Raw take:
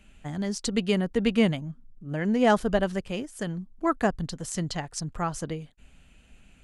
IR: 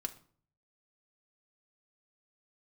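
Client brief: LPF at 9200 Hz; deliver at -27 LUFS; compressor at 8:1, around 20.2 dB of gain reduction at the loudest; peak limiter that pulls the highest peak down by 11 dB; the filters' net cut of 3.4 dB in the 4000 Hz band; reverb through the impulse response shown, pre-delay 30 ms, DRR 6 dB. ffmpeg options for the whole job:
-filter_complex "[0:a]lowpass=9.2k,equalizer=f=4k:t=o:g=-5,acompressor=threshold=-38dB:ratio=8,alimiter=level_in=8.5dB:limit=-24dB:level=0:latency=1,volume=-8.5dB,asplit=2[a][b];[1:a]atrim=start_sample=2205,adelay=30[c];[b][c]afir=irnorm=-1:irlink=0,volume=-5.5dB[d];[a][d]amix=inputs=2:normalize=0,volume=16dB"

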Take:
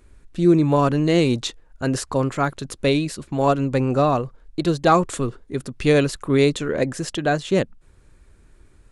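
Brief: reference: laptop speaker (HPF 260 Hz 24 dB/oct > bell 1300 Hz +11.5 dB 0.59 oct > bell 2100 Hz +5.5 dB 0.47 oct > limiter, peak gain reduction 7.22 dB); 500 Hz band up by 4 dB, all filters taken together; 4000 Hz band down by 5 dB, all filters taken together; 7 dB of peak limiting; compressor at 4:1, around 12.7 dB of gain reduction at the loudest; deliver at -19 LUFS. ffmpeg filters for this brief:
-af "equalizer=f=500:t=o:g=4.5,equalizer=f=4k:t=o:g=-7.5,acompressor=threshold=-25dB:ratio=4,alimiter=limit=-20.5dB:level=0:latency=1,highpass=f=260:w=0.5412,highpass=f=260:w=1.3066,equalizer=f=1.3k:t=o:w=0.59:g=11.5,equalizer=f=2.1k:t=o:w=0.47:g=5.5,volume=13.5dB,alimiter=limit=-7.5dB:level=0:latency=1"

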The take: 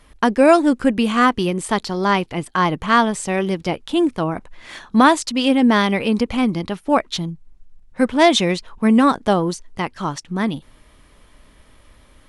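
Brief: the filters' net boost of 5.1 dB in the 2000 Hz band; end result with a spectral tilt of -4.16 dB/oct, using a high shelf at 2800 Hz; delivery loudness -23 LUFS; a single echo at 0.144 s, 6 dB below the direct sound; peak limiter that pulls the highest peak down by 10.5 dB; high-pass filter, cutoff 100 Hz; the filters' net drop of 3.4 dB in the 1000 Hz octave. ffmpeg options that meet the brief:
-af "highpass=100,equalizer=f=1k:t=o:g=-7,equalizer=f=2k:t=o:g=7,highshelf=f=2.8k:g=4,alimiter=limit=-10dB:level=0:latency=1,aecho=1:1:144:0.501,volume=-3dB"

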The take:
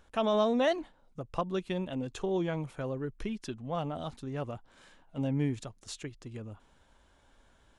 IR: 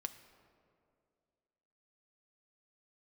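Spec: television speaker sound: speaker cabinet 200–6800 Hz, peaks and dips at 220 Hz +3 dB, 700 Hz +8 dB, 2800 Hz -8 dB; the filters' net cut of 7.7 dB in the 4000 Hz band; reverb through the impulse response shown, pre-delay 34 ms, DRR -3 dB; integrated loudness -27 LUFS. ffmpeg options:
-filter_complex "[0:a]equalizer=f=4k:t=o:g=-6,asplit=2[a][b];[1:a]atrim=start_sample=2205,adelay=34[c];[b][c]afir=irnorm=-1:irlink=0,volume=5.5dB[d];[a][d]amix=inputs=2:normalize=0,highpass=f=200:w=0.5412,highpass=f=200:w=1.3066,equalizer=f=220:t=q:w=4:g=3,equalizer=f=700:t=q:w=4:g=8,equalizer=f=2.8k:t=q:w=4:g=-8,lowpass=f=6.8k:w=0.5412,lowpass=f=6.8k:w=1.3066"

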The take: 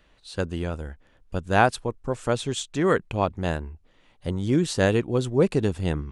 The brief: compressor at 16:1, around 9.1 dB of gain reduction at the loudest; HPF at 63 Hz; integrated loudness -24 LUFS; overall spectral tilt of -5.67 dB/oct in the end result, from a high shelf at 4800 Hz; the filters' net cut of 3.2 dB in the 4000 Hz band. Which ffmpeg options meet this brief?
-af "highpass=63,equalizer=f=4k:t=o:g=-5.5,highshelf=f=4.8k:g=3.5,acompressor=threshold=-22dB:ratio=16,volume=6dB"

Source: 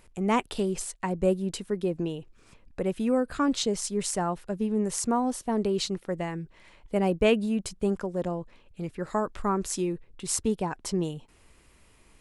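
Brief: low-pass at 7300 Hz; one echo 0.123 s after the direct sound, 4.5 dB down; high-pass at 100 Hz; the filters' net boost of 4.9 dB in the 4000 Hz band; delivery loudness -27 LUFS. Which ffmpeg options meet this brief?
-af "highpass=100,lowpass=7.3k,equalizer=f=4k:t=o:g=6.5,aecho=1:1:123:0.596,volume=0.5dB"

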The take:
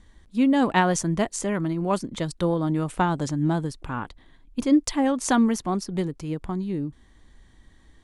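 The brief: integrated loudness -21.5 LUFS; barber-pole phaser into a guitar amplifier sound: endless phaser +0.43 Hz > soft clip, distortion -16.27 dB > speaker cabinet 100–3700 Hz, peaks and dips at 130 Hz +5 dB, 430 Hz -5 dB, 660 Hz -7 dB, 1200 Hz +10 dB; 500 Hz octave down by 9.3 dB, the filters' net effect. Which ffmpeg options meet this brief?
-filter_complex "[0:a]equalizer=f=500:t=o:g=-8.5,asplit=2[a][b];[b]afreqshift=0.43[c];[a][c]amix=inputs=2:normalize=1,asoftclip=threshold=-20dB,highpass=100,equalizer=f=130:t=q:w=4:g=5,equalizer=f=430:t=q:w=4:g=-5,equalizer=f=660:t=q:w=4:g=-7,equalizer=f=1.2k:t=q:w=4:g=10,lowpass=f=3.7k:w=0.5412,lowpass=f=3.7k:w=1.3066,volume=10dB"

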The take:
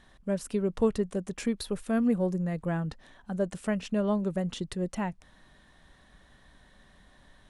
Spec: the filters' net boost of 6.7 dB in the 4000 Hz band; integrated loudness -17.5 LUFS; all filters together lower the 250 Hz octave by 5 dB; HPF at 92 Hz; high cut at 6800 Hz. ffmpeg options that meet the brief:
-af "highpass=92,lowpass=6.8k,equalizer=f=250:t=o:g=-6.5,equalizer=f=4k:t=o:g=8.5,volume=16dB"

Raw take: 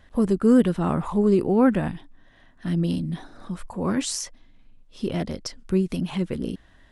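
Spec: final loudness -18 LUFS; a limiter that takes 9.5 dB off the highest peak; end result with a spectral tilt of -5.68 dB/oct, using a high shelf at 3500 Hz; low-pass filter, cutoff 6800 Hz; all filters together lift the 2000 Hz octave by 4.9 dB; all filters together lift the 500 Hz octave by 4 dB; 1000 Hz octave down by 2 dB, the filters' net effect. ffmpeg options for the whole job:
-af "lowpass=6.8k,equalizer=f=500:t=o:g=6,equalizer=f=1k:t=o:g=-7.5,equalizer=f=2k:t=o:g=7.5,highshelf=f=3.5k:g=4.5,volume=8.5dB,alimiter=limit=-6.5dB:level=0:latency=1"

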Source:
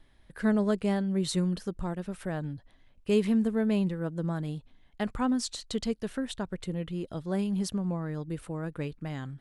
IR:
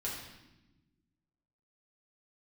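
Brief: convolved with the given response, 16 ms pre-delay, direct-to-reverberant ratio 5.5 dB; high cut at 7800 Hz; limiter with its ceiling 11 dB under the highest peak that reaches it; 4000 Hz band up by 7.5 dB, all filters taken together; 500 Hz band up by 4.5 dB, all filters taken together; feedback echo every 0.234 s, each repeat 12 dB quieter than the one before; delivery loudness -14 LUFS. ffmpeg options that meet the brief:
-filter_complex "[0:a]lowpass=7.8k,equalizer=f=500:t=o:g=5.5,equalizer=f=4k:t=o:g=9,alimiter=limit=-22dB:level=0:latency=1,aecho=1:1:234|468|702:0.251|0.0628|0.0157,asplit=2[a][b];[1:a]atrim=start_sample=2205,adelay=16[c];[b][c]afir=irnorm=-1:irlink=0,volume=-7.5dB[d];[a][d]amix=inputs=2:normalize=0,volume=16.5dB"

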